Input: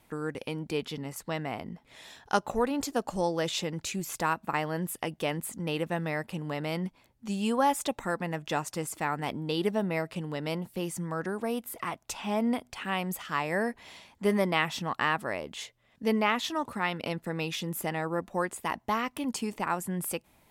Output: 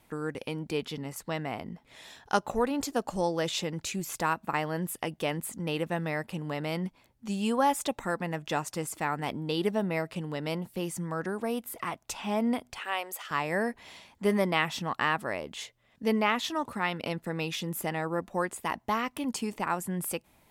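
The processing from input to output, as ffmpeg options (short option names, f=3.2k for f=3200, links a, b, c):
-filter_complex "[0:a]asettb=1/sr,asplit=3[a][b][c];[a]atrim=end=12.794[d];[b]atrim=start=12.79:end=13.31,asetpts=PTS-STARTPTS,afade=t=in:d=0.004:c=qsin,afade=t=out:st=0.516:d=0.004:c=qsin,highpass=f=410:w=0.5412,highpass=f=410:w=1.3066[e];[c]atrim=start=13.306[f];[d][e]acrossfade=d=0.004:c1=hsin:c2=qsin[g];[g][f]acrossfade=d=0.004:c1=qsin:c2=hsin"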